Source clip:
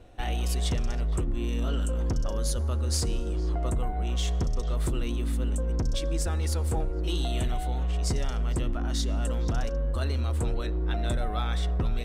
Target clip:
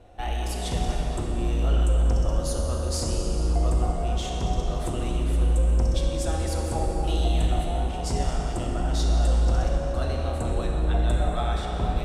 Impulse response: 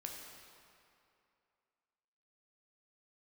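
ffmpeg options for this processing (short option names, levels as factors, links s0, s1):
-filter_complex "[0:a]equalizer=f=740:t=o:w=0.74:g=6.5[s0];[1:a]atrim=start_sample=2205,asetrate=23814,aresample=44100[s1];[s0][s1]afir=irnorm=-1:irlink=0"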